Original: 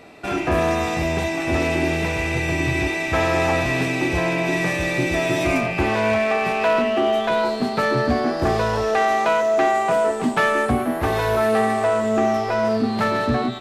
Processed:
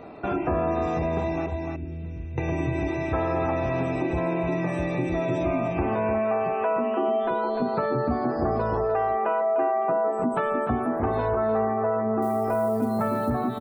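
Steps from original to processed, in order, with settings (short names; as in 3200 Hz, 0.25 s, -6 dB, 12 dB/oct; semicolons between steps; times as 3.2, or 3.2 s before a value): spectral gate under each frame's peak -25 dB strong; 1.46–2.38 passive tone stack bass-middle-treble 10-0-1; 12.22–13.3 companded quantiser 6-bit; echo 0.299 s -8.5 dB; compressor 2.5:1, threshold -29 dBFS, peak gain reduction 10.5 dB; band shelf 3400 Hz -10.5 dB 2.3 oct; gain +3.5 dB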